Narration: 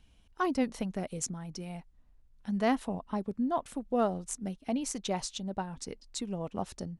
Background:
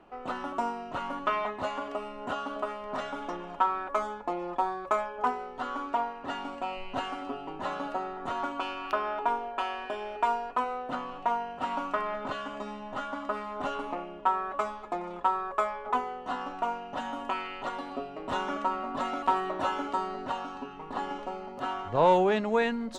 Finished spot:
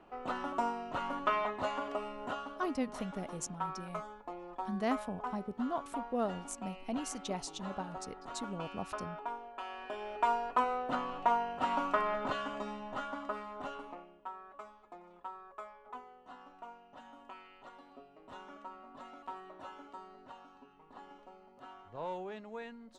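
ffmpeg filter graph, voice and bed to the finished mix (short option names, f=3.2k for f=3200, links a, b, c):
-filter_complex "[0:a]adelay=2200,volume=-5.5dB[a];[1:a]volume=9dB,afade=t=out:st=2.13:d=0.46:silence=0.334965,afade=t=in:st=9.6:d=1:silence=0.266073,afade=t=out:st=12.23:d=1.98:silence=0.125893[b];[a][b]amix=inputs=2:normalize=0"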